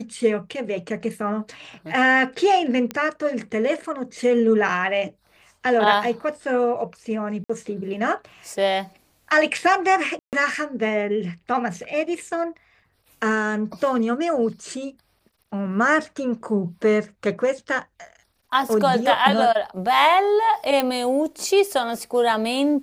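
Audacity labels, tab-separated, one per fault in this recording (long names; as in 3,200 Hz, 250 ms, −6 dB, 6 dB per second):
2.910000	2.910000	click −13 dBFS
7.440000	7.500000	drop-out 55 ms
10.190000	10.330000	drop-out 138 ms
20.800000	20.800000	click −8 dBFS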